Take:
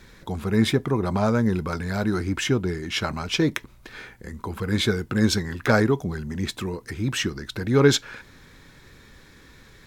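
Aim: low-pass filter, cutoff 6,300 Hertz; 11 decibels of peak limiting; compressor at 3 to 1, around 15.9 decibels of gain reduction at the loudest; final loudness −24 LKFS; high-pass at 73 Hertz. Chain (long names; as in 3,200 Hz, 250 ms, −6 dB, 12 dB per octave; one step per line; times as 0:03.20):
high-pass filter 73 Hz
low-pass filter 6,300 Hz
downward compressor 3 to 1, threshold −33 dBFS
level +12.5 dB
brickwall limiter −12.5 dBFS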